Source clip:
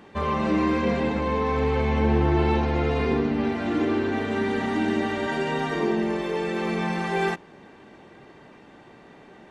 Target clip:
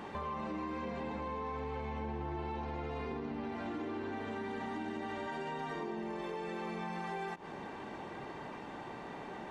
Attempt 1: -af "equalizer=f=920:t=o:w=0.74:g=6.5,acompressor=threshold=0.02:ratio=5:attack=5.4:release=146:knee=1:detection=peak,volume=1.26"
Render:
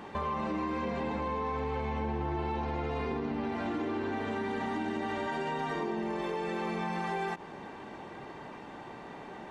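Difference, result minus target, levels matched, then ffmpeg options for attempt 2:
compression: peak gain reduction -6 dB
-af "equalizer=f=920:t=o:w=0.74:g=6.5,acompressor=threshold=0.00841:ratio=5:attack=5.4:release=146:knee=1:detection=peak,volume=1.26"

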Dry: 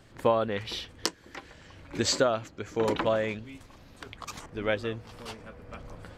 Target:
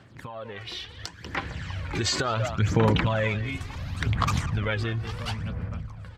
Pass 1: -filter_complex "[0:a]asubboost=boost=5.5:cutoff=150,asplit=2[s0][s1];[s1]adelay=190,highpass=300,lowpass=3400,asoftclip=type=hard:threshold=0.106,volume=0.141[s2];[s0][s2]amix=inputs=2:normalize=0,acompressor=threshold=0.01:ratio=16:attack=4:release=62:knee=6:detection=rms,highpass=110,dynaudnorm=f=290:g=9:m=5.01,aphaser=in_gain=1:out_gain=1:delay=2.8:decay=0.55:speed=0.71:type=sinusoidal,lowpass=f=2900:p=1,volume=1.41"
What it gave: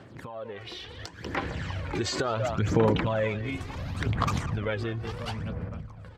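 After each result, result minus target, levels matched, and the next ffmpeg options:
compression: peak gain reduction +6.5 dB; 500 Hz band +3.5 dB
-filter_complex "[0:a]asubboost=boost=5.5:cutoff=150,asplit=2[s0][s1];[s1]adelay=190,highpass=300,lowpass=3400,asoftclip=type=hard:threshold=0.106,volume=0.141[s2];[s0][s2]amix=inputs=2:normalize=0,acompressor=threshold=0.0224:ratio=16:attack=4:release=62:knee=6:detection=rms,highpass=110,dynaudnorm=f=290:g=9:m=5.01,aphaser=in_gain=1:out_gain=1:delay=2.8:decay=0.55:speed=0.71:type=sinusoidal,lowpass=f=2900:p=1,volume=1.41"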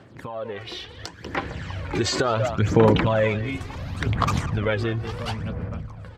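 500 Hz band +4.0 dB
-filter_complex "[0:a]asubboost=boost=5.5:cutoff=150,asplit=2[s0][s1];[s1]adelay=190,highpass=300,lowpass=3400,asoftclip=type=hard:threshold=0.106,volume=0.141[s2];[s0][s2]amix=inputs=2:normalize=0,acompressor=threshold=0.0224:ratio=16:attack=4:release=62:knee=6:detection=rms,highpass=110,equalizer=f=440:w=0.57:g=-8,dynaudnorm=f=290:g=9:m=5.01,aphaser=in_gain=1:out_gain=1:delay=2.8:decay=0.55:speed=0.71:type=sinusoidal,lowpass=f=2900:p=1,volume=1.41"

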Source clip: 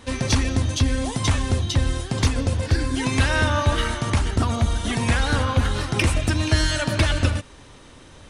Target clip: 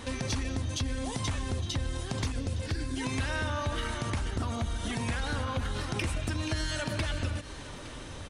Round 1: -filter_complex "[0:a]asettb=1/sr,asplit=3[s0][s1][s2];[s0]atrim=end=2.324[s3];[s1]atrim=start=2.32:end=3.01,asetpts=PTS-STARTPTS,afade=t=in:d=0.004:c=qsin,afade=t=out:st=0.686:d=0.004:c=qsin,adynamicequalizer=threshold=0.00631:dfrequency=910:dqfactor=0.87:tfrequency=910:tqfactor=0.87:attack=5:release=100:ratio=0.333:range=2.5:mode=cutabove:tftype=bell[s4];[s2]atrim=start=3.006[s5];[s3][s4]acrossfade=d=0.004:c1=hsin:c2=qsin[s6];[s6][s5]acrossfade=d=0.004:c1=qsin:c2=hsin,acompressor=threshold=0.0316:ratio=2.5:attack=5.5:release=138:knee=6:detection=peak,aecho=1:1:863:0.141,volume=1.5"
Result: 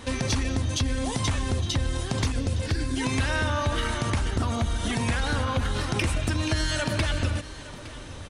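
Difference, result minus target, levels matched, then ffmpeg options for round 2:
compression: peak gain reduction -6 dB
-filter_complex "[0:a]asettb=1/sr,asplit=3[s0][s1][s2];[s0]atrim=end=2.324[s3];[s1]atrim=start=2.32:end=3.01,asetpts=PTS-STARTPTS,afade=t=in:d=0.004:c=qsin,afade=t=out:st=0.686:d=0.004:c=qsin,adynamicequalizer=threshold=0.00631:dfrequency=910:dqfactor=0.87:tfrequency=910:tqfactor=0.87:attack=5:release=100:ratio=0.333:range=2.5:mode=cutabove:tftype=bell[s4];[s2]atrim=start=3.006[s5];[s3][s4]acrossfade=d=0.004:c1=hsin:c2=qsin[s6];[s6][s5]acrossfade=d=0.004:c1=qsin:c2=hsin,acompressor=threshold=0.01:ratio=2.5:attack=5.5:release=138:knee=6:detection=peak,aecho=1:1:863:0.141,volume=1.5"

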